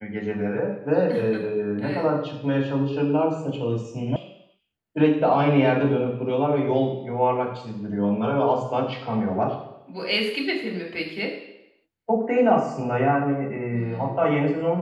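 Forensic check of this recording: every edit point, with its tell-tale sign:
4.16 sound cut off

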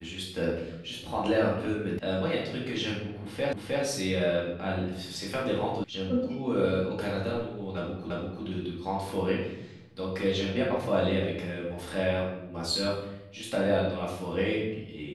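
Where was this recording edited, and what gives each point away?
1.99 sound cut off
3.53 repeat of the last 0.31 s
5.84 sound cut off
8.1 repeat of the last 0.34 s

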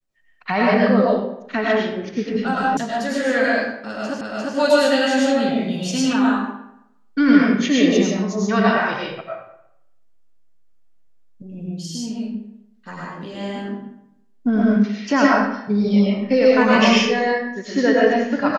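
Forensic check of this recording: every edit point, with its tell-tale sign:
2.77 sound cut off
4.21 repeat of the last 0.35 s

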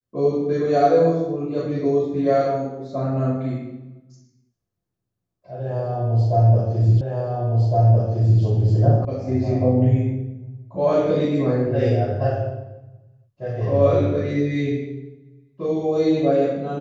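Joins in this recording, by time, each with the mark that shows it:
7.01 repeat of the last 1.41 s
9.05 sound cut off

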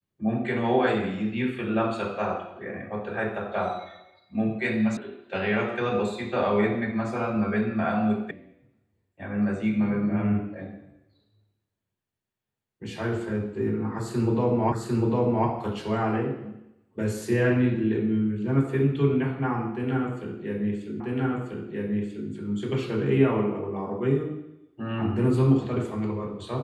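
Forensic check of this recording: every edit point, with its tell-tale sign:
4.97 sound cut off
8.31 sound cut off
14.72 repeat of the last 0.75 s
21 repeat of the last 1.29 s

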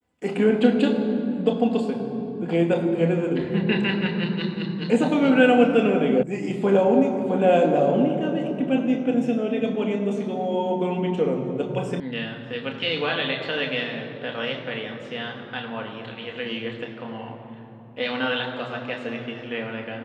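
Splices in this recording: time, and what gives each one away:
6.23 sound cut off
12 sound cut off

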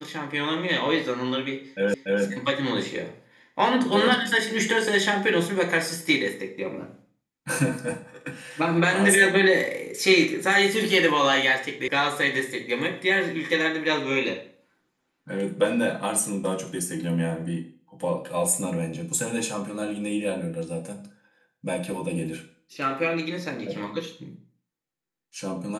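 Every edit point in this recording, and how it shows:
1.94 repeat of the last 0.29 s
11.88 sound cut off

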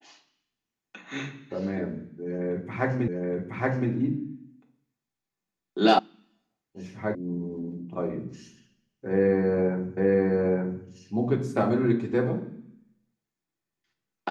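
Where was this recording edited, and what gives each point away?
3.08 repeat of the last 0.82 s
5.99 sound cut off
7.15 sound cut off
9.97 repeat of the last 0.87 s

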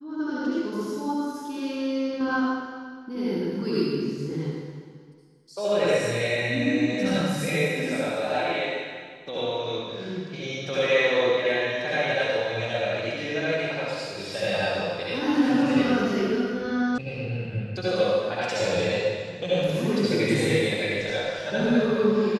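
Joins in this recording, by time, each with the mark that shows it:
16.98 sound cut off

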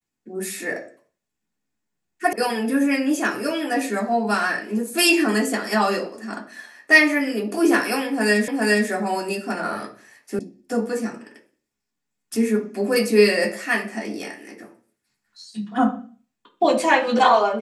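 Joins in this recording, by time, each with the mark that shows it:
2.33 sound cut off
8.48 repeat of the last 0.41 s
10.39 sound cut off

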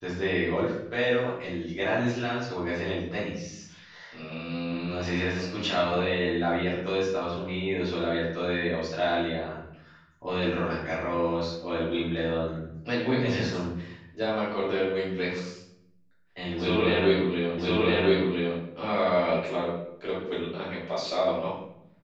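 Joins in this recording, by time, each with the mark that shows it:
17.58 repeat of the last 1.01 s

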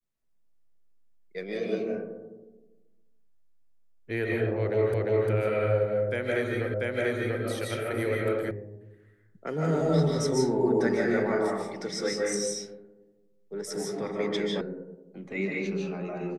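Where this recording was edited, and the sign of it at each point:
4.94 repeat of the last 0.35 s
6.74 repeat of the last 0.69 s
8.51 sound cut off
14.61 sound cut off

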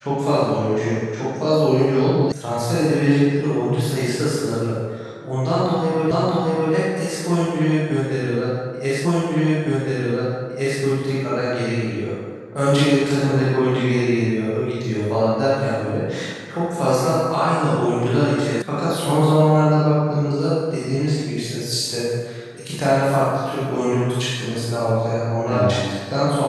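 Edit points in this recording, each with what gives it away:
2.32 sound cut off
6.11 repeat of the last 0.63 s
9.05 repeat of the last 1.76 s
18.62 sound cut off

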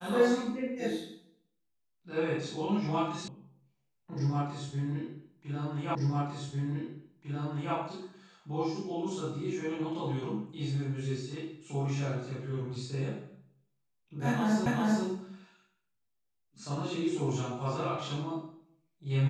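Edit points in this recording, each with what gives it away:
3.28 sound cut off
5.95 repeat of the last 1.8 s
14.66 repeat of the last 0.39 s

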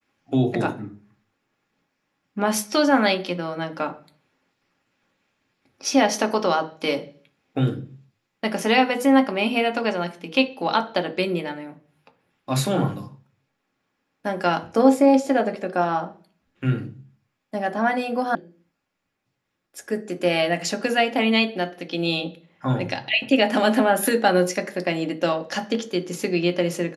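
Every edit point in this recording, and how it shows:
18.35 sound cut off

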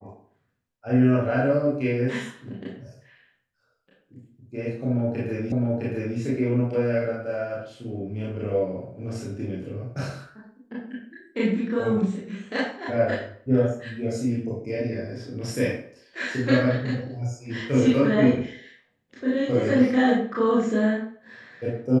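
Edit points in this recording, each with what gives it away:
5.52 repeat of the last 0.66 s

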